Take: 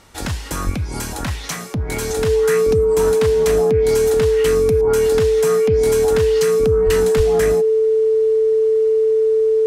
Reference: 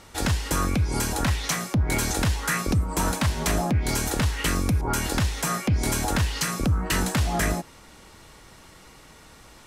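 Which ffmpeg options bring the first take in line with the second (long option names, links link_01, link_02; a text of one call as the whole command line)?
ffmpeg -i in.wav -filter_complex "[0:a]bandreject=frequency=440:width=30,asplit=3[link_01][link_02][link_03];[link_01]afade=type=out:start_time=0.65:duration=0.02[link_04];[link_02]highpass=frequency=140:width=0.5412,highpass=frequency=140:width=1.3066,afade=type=in:start_time=0.65:duration=0.02,afade=type=out:start_time=0.77:duration=0.02[link_05];[link_03]afade=type=in:start_time=0.77:duration=0.02[link_06];[link_04][link_05][link_06]amix=inputs=3:normalize=0,asplit=3[link_07][link_08][link_09];[link_07]afade=type=out:start_time=6.85:duration=0.02[link_10];[link_08]highpass=frequency=140:width=0.5412,highpass=frequency=140:width=1.3066,afade=type=in:start_time=6.85:duration=0.02,afade=type=out:start_time=6.97:duration=0.02[link_11];[link_09]afade=type=in:start_time=6.97:duration=0.02[link_12];[link_10][link_11][link_12]amix=inputs=3:normalize=0,asplit=3[link_13][link_14][link_15];[link_13]afade=type=out:start_time=7.16:duration=0.02[link_16];[link_14]highpass=frequency=140:width=0.5412,highpass=frequency=140:width=1.3066,afade=type=in:start_time=7.16:duration=0.02,afade=type=out:start_time=7.28:duration=0.02[link_17];[link_15]afade=type=in:start_time=7.28:duration=0.02[link_18];[link_16][link_17][link_18]amix=inputs=3:normalize=0" out.wav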